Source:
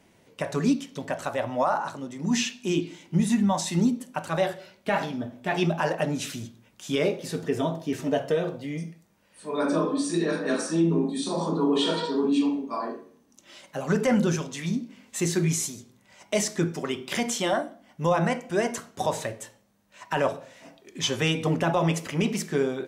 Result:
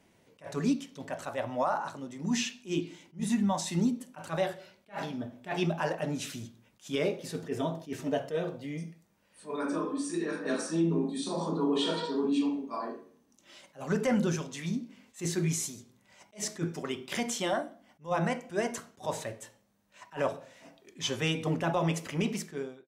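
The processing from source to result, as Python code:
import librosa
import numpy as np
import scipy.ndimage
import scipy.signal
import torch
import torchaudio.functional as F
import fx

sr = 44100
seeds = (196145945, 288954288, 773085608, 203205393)

y = fx.fade_out_tail(x, sr, length_s=0.57)
y = fx.graphic_eq_15(y, sr, hz=(160, 630, 4000), db=(-7, -7, -7), at=(9.56, 10.45))
y = fx.attack_slew(y, sr, db_per_s=270.0)
y = F.gain(torch.from_numpy(y), -5.0).numpy()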